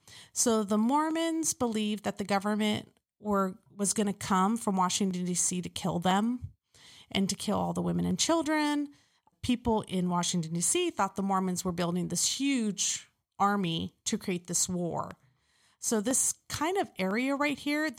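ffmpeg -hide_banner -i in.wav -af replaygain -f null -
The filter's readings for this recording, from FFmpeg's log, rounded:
track_gain = +10.8 dB
track_peak = 0.155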